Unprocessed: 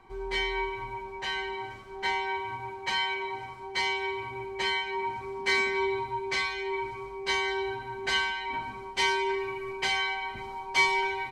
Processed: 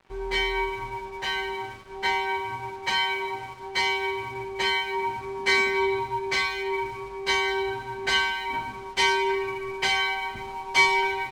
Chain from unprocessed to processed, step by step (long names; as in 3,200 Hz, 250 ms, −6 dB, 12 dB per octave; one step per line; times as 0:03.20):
dead-zone distortion −53.5 dBFS
level +4.5 dB